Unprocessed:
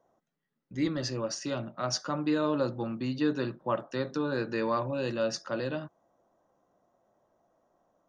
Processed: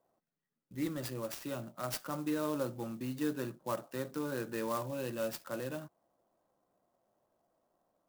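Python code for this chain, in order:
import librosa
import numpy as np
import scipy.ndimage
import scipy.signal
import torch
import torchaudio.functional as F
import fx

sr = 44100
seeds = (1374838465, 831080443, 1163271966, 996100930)

y = fx.clock_jitter(x, sr, seeds[0], jitter_ms=0.042)
y = F.gain(torch.from_numpy(y), -6.5).numpy()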